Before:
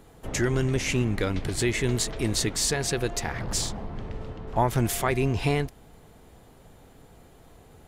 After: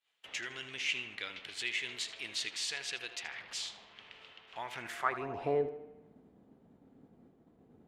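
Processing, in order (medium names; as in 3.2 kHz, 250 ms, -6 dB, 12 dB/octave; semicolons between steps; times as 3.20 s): band-pass sweep 2.9 kHz -> 240 Hz, 4.65–5.94 s; expander -57 dBFS; on a send: tape echo 78 ms, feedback 57%, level -11 dB, low-pass 4.2 kHz; on the sum: tape noise reduction on one side only encoder only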